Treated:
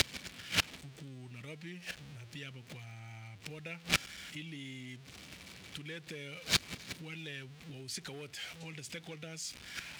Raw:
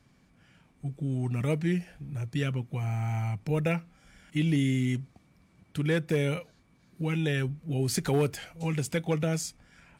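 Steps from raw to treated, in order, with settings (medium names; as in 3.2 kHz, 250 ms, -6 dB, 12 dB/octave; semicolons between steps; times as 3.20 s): jump at every zero crossing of -37 dBFS; peaking EQ 68 Hz +10.5 dB 1.1 oct; compression 5:1, threshold -30 dBFS, peak gain reduction 10 dB; inverted gate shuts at -35 dBFS, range -26 dB; frequency weighting D; trim +14 dB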